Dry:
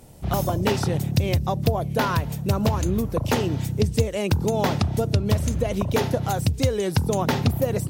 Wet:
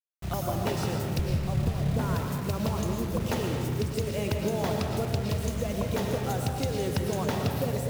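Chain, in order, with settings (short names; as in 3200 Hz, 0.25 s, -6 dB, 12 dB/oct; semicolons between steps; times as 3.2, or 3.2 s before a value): 1.19–2.15 RIAA curve playback; compressor 10:1, threshold -18 dBFS, peak gain reduction 15 dB; bit-crush 6-bit; reverb RT60 1.9 s, pre-delay 75 ms, DRR 1.5 dB; gain -7 dB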